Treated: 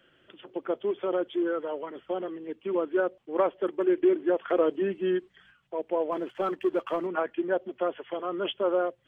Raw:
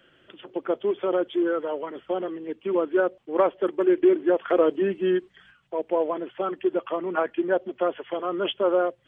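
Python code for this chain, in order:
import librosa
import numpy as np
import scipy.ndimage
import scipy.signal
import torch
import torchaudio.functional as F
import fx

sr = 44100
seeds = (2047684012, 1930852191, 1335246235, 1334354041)

y = fx.leveller(x, sr, passes=1, at=(6.12, 7.07))
y = F.gain(torch.from_numpy(y), -4.0).numpy()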